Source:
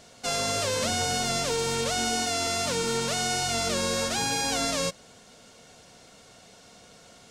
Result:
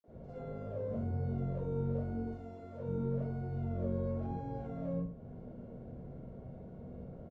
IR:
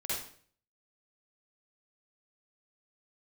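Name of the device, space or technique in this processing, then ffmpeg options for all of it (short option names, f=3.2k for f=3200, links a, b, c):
television next door: -filter_complex "[0:a]asettb=1/sr,asplit=3[a][b][c];[a]atrim=end=2.274[d];[b]atrim=start=2.27:end=2.73,asetpts=PTS-STARTPTS,afade=t=in:d=0.004:c=qsin,afade=t=out:st=0.456:d=0.004:c=qsin,bass=f=250:g=-9,treble=f=4k:g=9[e];[c]atrim=start=2.726[f];[d][e]acrossfade=d=0.004:c1=hsin:c2=qsin[g];[g][f]acrossfade=d=0.004:c1=qsin:c2=hsin,acrossover=split=290|4300[h][i][j];[i]adelay=40[k];[h]adelay=80[l];[l][k][j]amix=inputs=3:normalize=0,acompressor=threshold=-42dB:ratio=4,lowpass=300[m];[1:a]atrim=start_sample=2205[n];[m][n]afir=irnorm=-1:irlink=0,volume=9.5dB"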